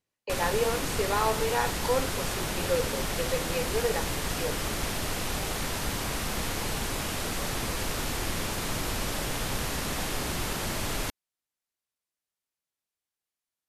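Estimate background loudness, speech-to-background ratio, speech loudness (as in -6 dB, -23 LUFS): -31.0 LUFS, -0.5 dB, -31.5 LUFS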